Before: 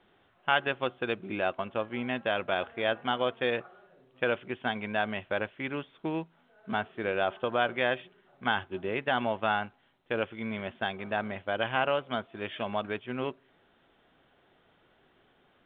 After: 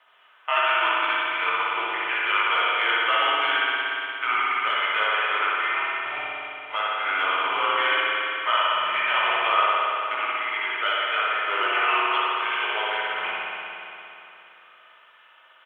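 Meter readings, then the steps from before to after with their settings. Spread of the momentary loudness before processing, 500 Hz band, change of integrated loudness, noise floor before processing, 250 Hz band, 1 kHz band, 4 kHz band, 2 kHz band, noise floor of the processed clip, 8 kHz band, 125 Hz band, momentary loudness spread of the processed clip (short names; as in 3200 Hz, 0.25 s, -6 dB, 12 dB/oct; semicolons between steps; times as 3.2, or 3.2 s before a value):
8 LU, -1.5 dB, +9.0 dB, -66 dBFS, -9.0 dB, +10.5 dB, +12.0 dB, +11.0 dB, -54 dBFS, n/a, under -20 dB, 8 LU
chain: HPF 1100 Hz 24 dB/oct; comb 3.5 ms, depth 37%; in parallel at +2 dB: limiter -25 dBFS, peak gain reduction 10.5 dB; on the sum: phaser 0.52 Hz, delay 1.8 ms, feedback 33%; frequency shift -200 Hz; chorus 1.5 Hz, delay 16.5 ms, depth 2.3 ms; on a send: echo with dull and thin repeats by turns 0.15 s, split 1400 Hz, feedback 59%, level -11 dB; on the sum: spring tank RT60 3 s, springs 57 ms, chirp 60 ms, DRR -6 dB; gain +3.5 dB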